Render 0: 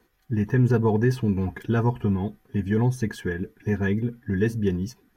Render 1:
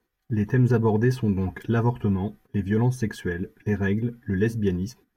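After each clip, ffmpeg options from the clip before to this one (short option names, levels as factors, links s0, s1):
-af "agate=range=0.282:threshold=0.00398:ratio=16:detection=peak"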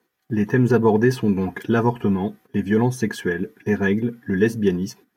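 -af "highpass=180,volume=2.11"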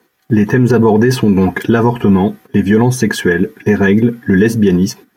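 -af "alimiter=level_in=5.01:limit=0.891:release=50:level=0:latency=1,volume=0.891"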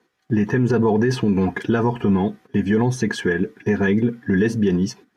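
-af "lowpass=7200,volume=0.398"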